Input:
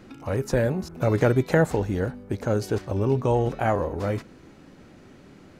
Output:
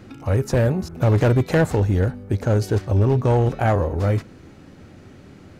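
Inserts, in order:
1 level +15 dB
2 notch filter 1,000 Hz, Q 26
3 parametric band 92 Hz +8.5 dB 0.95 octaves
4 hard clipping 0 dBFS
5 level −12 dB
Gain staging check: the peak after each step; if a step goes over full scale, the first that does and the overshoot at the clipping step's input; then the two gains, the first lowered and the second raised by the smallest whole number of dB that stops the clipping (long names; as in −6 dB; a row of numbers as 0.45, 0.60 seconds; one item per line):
+7.5, +7.5, +8.5, 0.0, −12.0 dBFS
step 1, 8.5 dB
step 1 +6 dB, step 5 −3 dB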